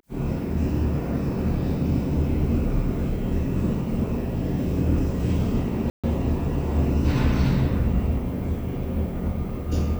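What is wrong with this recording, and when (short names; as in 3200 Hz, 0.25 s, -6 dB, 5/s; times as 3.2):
5.9–6.04 gap 0.136 s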